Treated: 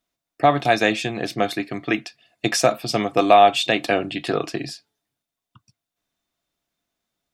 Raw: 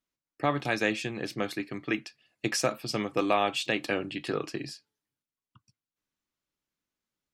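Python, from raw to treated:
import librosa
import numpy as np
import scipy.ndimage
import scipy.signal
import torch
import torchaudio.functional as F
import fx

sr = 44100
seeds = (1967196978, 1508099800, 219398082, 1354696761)

y = fx.small_body(x, sr, hz=(690.0, 3600.0), ring_ms=50, db=13)
y = F.gain(torch.from_numpy(y), 7.5).numpy()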